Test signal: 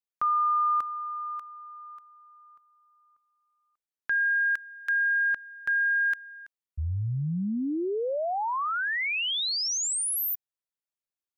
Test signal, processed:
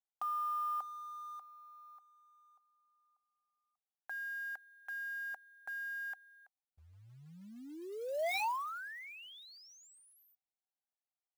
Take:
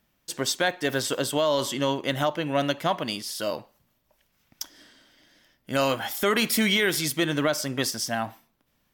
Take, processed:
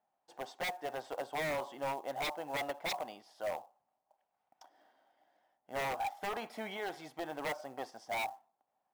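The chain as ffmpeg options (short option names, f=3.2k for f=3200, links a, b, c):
-af "bandpass=f=770:t=q:w=7.9:csg=0,acrusher=bits=5:mode=log:mix=0:aa=0.000001,aeval=exprs='0.0168*(abs(mod(val(0)/0.0168+3,4)-2)-1)':c=same,volume=5.5dB"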